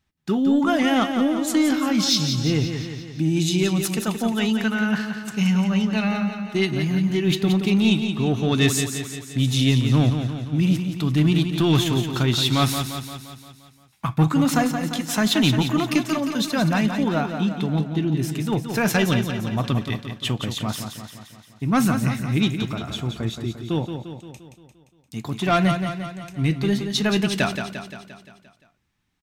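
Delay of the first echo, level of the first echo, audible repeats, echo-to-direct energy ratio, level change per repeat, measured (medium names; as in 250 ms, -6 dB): 174 ms, -7.5 dB, 6, -6.0 dB, -5.0 dB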